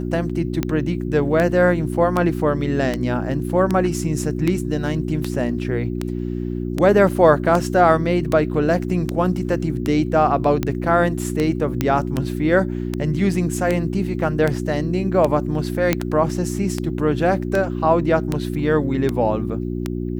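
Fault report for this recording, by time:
hum 60 Hz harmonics 6 -25 dBFS
tick 78 rpm -8 dBFS
11.81 s: pop -6 dBFS
15.93 s: pop -3 dBFS

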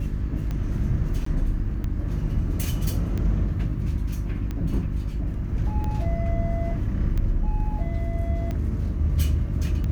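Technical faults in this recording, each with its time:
hum 50 Hz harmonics 7 -29 dBFS
tick 45 rpm -19 dBFS
1.25–1.26 s: dropout 14 ms

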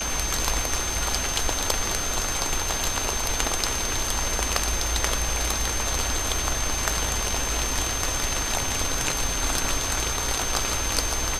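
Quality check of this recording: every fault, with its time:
whine 6.3 kHz -29 dBFS

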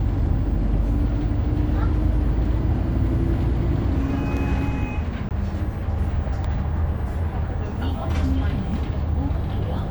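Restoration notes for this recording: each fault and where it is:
5.29–5.31 s: dropout 18 ms

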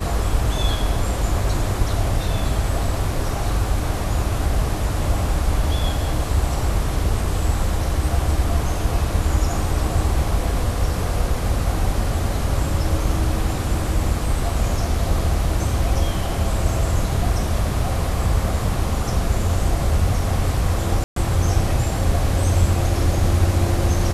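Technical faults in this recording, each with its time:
21.04–21.16 s: dropout 123 ms

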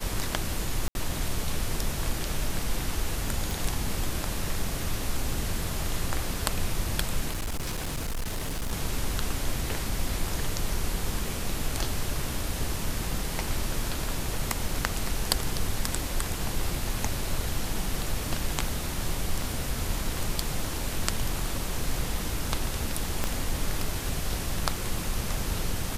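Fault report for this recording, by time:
0.88–0.95 s: dropout 71 ms
3.51 s: pop
7.30–8.73 s: clipped -27 dBFS
23.24 s: pop -12 dBFS

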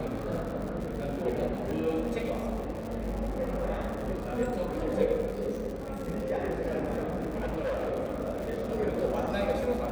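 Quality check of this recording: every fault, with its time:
crackle 160 per s -36 dBFS
1.71 s: pop -24 dBFS
7.32–7.93 s: clipped -27.5 dBFS

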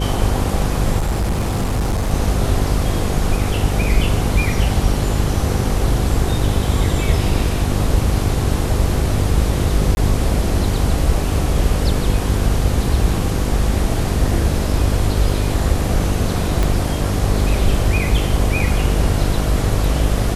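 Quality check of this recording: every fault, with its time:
buzz 50 Hz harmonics 10 -21 dBFS
0.98–2.14 s: clipped -15 dBFS
9.95–9.97 s: dropout 21 ms
16.63 s: pop

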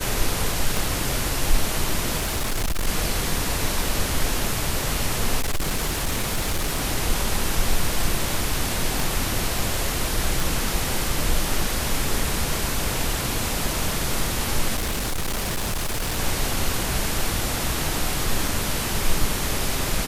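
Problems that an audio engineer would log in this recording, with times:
0.77 s: pop
2.18–2.88 s: clipped -20 dBFS
5.39–6.84 s: clipped -19 dBFS
9.00 s: pop
10.40 s: pop
14.76–16.19 s: clipped -21.5 dBFS

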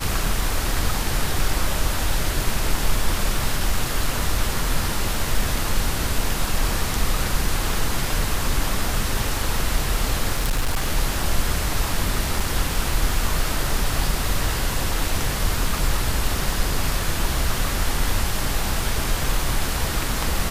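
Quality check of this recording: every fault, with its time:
10.37–10.88 s: clipped -16.5 dBFS
12.40 s: dropout 3.4 ms

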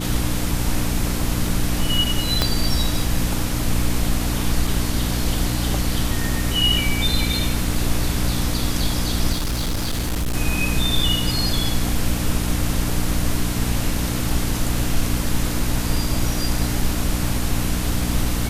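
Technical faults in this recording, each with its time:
hum 60 Hz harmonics 5 -25 dBFS
2.42 s: pop -3 dBFS
4.67 s: dropout 3.1 ms
9.32–10.34 s: clipped -19 dBFS

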